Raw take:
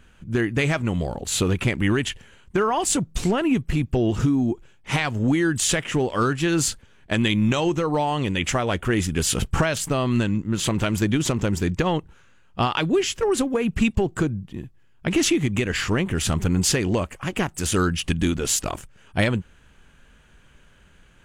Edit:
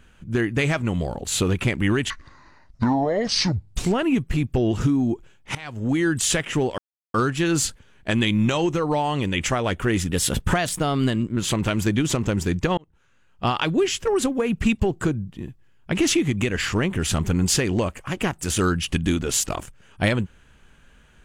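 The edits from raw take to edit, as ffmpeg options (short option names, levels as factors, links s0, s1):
-filter_complex "[0:a]asplit=8[s0][s1][s2][s3][s4][s5][s6][s7];[s0]atrim=end=2.104[s8];[s1]atrim=start=2.1:end=3.14,asetpts=PTS-STARTPTS,asetrate=27783,aresample=44100[s9];[s2]atrim=start=3.136:end=4.94,asetpts=PTS-STARTPTS,afade=t=out:st=1.8:d=0.004:c=hsin:silence=0.0794328[s10];[s3]atrim=start=4.94:end=6.17,asetpts=PTS-STARTPTS,afade=t=in:d=0.48:silence=0.0794328,afade=t=out:st=1.226:d=0.004:c=hsin,apad=pad_dur=0.36[s11];[s4]atrim=start=6.17:end=9.134,asetpts=PTS-STARTPTS,afade=t=in:d=0.004:c=hsin[s12];[s5]atrim=start=9.13:end=10.52,asetpts=PTS-STARTPTS,asetrate=48510,aresample=44100,atrim=end_sample=55726,asetpts=PTS-STARTPTS[s13];[s6]atrim=start=10.516:end=11.93,asetpts=PTS-STARTPTS,afade=t=out:st=1.41:d=0.004:c=hsin[s14];[s7]atrim=start=11.93,asetpts=PTS-STARTPTS,afade=t=in:d=0.75[s15];[s8][s9]acrossfade=d=0.004:c1=hsin:c2=hsin[s16];[s10][s11][s12]concat=n=3:v=0:a=1[s17];[s16][s17]acrossfade=d=0.004:c1=hsin:c2=hsin[s18];[s18][s13]acrossfade=d=0.004:c1=hsin:c2=hsin[s19];[s14][s15]concat=n=2:v=0:a=1[s20];[s19][s20]acrossfade=d=0.004:c1=hsin:c2=hsin"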